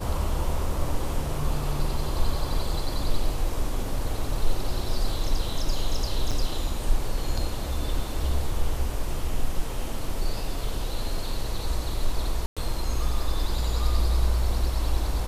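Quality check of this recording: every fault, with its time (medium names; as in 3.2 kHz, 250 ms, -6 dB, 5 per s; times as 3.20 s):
6.31–6.32 s: dropout 6.1 ms
12.46–12.57 s: dropout 106 ms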